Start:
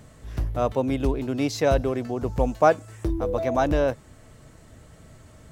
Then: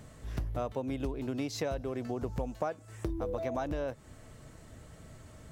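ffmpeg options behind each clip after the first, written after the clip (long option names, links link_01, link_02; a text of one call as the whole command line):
ffmpeg -i in.wav -af "acompressor=threshold=-28dB:ratio=10,volume=-2.5dB" out.wav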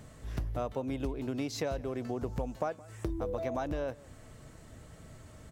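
ffmpeg -i in.wav -af "aecho=1:1:169:0.0794" out.wav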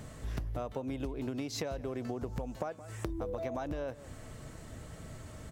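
ffmpeg -i in.wav -af "acompressor=threshold=-38dB:ratio=6,volume=4.5dB" out.wav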